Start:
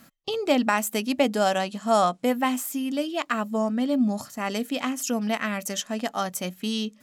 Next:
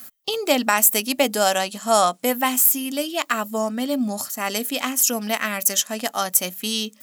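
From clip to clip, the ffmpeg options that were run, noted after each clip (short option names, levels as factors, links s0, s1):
-af "aemphasis=mode=production:type=bsi,volume=1.5"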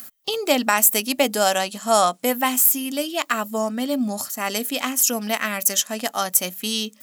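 -af "acompressor=mode=upward:threshold=0.0141:ratio=2.5"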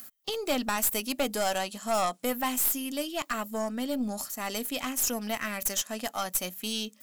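-af "aeval=exprs='(tanh(5.62*val(0)+0.3)-tanh(0.3))/5.62':c=same,volume=0.501"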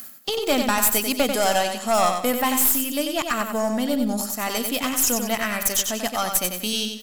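-af "aecho=1:1:93|186|279|372:0.501|0.175|0.0614|0.0215,volume=2.24"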